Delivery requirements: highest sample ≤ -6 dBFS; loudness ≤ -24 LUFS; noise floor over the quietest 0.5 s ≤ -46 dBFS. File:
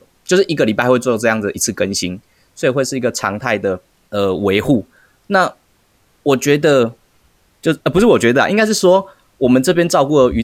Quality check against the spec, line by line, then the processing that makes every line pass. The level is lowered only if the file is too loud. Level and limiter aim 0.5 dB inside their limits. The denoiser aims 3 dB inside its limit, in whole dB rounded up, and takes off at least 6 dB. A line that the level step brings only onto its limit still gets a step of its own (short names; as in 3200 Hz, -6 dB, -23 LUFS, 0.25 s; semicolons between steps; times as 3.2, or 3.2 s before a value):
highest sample -2.0 dBFS: fail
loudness -15.0 LUFS: fail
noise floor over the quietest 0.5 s -57 dBFS: OK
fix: gain -9.5 dB